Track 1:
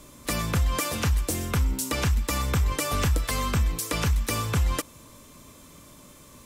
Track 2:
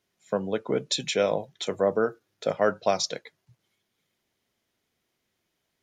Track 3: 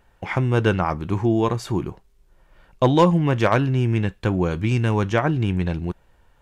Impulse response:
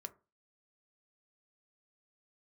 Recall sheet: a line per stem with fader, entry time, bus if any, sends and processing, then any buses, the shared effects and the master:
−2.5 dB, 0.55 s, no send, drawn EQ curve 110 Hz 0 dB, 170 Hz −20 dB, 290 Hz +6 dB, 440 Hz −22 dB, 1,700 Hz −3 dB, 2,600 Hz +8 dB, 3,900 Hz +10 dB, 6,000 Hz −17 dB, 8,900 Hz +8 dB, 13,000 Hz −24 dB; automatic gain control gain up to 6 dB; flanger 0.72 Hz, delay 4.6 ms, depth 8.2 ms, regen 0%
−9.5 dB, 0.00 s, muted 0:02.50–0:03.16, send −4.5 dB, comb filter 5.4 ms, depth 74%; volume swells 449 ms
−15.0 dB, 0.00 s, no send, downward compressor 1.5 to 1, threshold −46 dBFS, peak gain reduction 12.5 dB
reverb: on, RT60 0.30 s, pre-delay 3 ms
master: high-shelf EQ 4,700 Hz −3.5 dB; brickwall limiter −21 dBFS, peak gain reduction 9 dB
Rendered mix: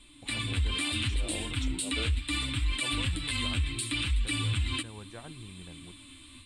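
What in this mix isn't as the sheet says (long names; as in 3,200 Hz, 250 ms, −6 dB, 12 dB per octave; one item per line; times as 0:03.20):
stem 1: entry 0.55 s → 0.00 s
stem 2: missing comb filter 5.4 ms, depth 74%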